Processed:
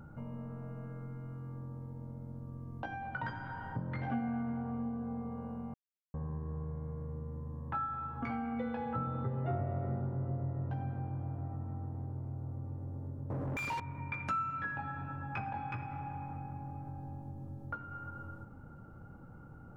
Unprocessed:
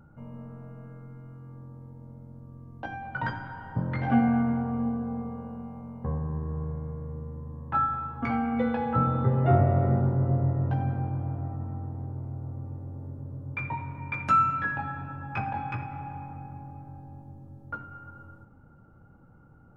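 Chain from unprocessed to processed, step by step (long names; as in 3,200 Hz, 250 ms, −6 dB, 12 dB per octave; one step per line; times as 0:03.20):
0:13.30–0:13.80: mid-hump overdrive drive 35 dB, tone 1,800 Hz, clips at −20.5 dBFS
downward compressor 2.5 to 1, threshold −45 dBFS, peak gain reduction 18.5 dB
0:05.74–0:06.14: silence
level +3.5 dB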